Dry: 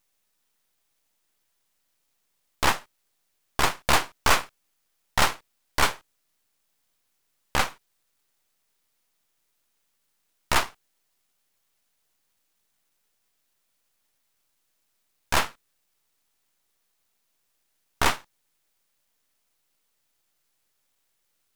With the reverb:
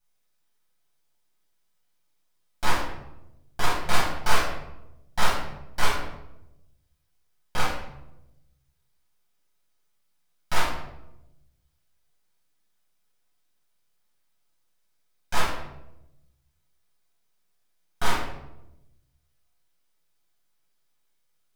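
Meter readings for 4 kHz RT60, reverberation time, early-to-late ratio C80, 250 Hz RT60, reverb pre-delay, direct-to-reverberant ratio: 0.55 s, 0.90 s, 6.0 dB, 1.3 s, 5 ms, −8.5 dB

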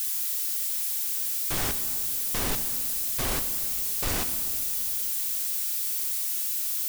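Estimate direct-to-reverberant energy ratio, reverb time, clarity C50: 8.5 dB, 2.7 s, 10.5 dB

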